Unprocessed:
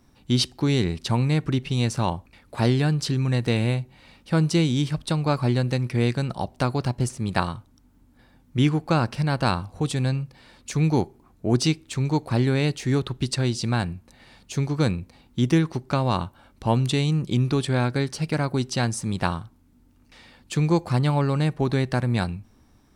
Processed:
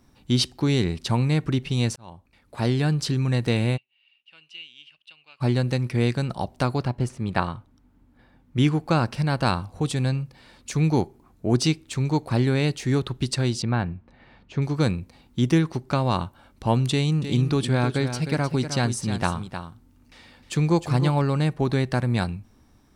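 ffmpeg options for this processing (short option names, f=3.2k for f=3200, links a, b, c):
-filter_complex "[0:a]asplit=3[a][b][c];[a]afade=t=out:st=3.76:d=0.02[d];[b]bandpass=f=2.8k:t=q:w=14,afade=t=in:st=3.76:d=0.02,afade=t=out:st=5.4:d=0.02[e];[c]afade=t=in:st=5.4:d=0.02[f];[d][e][f]amix=inputs=3:normalize=0,asettb=1/sr,asplit=3[g][h][i];[g]atrim=end=6.834[j];[h]atrim=start=6.83:end=8.57,asetpts=PTS-STARTPTS,afade=t=in:d=0.004:c=qsin,afade=t=out:st=1.736:d=0.004:c=qsin,bass=f=250:g=-1,treble=f=4k:g=-10[k];[i]atrim=start=8.566[l];[j][k]acrossfade=d=0.004:c1=hsin:c2=qsin[m];[m][l]acrossfade=d=0.004:c1=qsin:c2=hsin,asettb=1/sr,asplit=3[n][o][p];[n]atrim=end=13.624[q];[o]atrim=start=13.62:end=14.62,asetpts=PTS-STARTPTS,afade=t=in:d=0.004:c=qsin,afade=t=out:st=0.996:d=0.004:c=qsin,lowpass=2.3k[r];[p]atrim=start=14.616[s];[q][r]acrossfade=d=0.004:c1=hsin:c2=qsin[t];[t][s]acrossfade=d=0.004:c1=qsin:c2=hsin,asettb=1/sr,asplit=3[u][v][w];[u]atrim=end=16.914[x];[v]atrim=start=16.91:end=21.22,asetpts=PTS-STARTPTS,afade=t=in:d=0.004:c=qsin,afade=t=out:st=4.306:d=0.004:c=qsin,aecho=1:1:309:0.335,atrim=end_sample=190071[y];[w]atrim=start=21.216[z];[x][y]acrossfade=d=0.004:c1=hsin:c2=qsin[aa];[aa][z]acrossfade=d=0.004:c1=qsin:c2=hsin,asplit=2[ab][ac];[ab]atrim=end=1.96,asetpts=PTS-STARTPTS,afade=t=out:st=1.956:d=0.004:c=hsin[ad];[ac]atrim=start=1.96,asetpts=PTS-STARTPTS,afade=t=in:d=0.96[ae];[ad][ae]concat=n=2:v=0:a=1"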